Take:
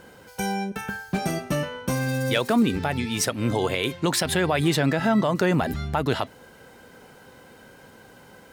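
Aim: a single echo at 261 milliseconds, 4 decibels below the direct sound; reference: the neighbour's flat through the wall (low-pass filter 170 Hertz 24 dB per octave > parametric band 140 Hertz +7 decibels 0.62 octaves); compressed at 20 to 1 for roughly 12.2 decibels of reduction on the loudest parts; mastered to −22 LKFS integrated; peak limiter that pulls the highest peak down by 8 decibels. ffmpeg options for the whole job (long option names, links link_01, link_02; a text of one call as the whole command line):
ffmpeg -i in.wav -af "acompressor=threshold=-28dB:ratio=20,alimiter=level_in=1dB:limit=-24dB:level=0:latency=1,volume=-1dB,lowpass=frequency=170:width=0.5412,lowpass=frequency=170:width=1.3066,equalizer=frequency=140:width_type=o:width=0.62:gain=7,aecho=1:1:261:0.631,volume=14dB" out.wav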